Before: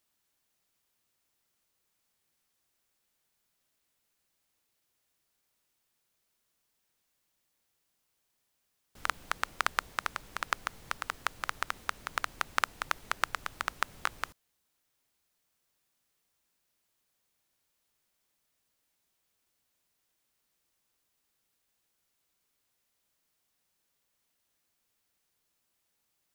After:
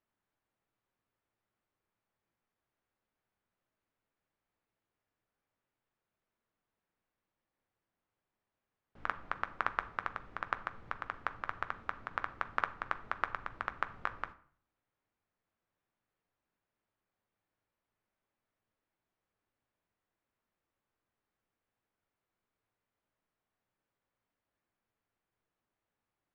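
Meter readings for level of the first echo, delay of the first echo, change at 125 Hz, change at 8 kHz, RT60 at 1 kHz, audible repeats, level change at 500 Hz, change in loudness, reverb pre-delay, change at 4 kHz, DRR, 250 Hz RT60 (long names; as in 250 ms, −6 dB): no echo audible, no echo audible, −0.5 dB, below −25 dB, 0.50 s, no echo audible, −1.5 dB, −4.0 dB, 9 ms, −14.5 dB, 10.0 dB, 0.70 s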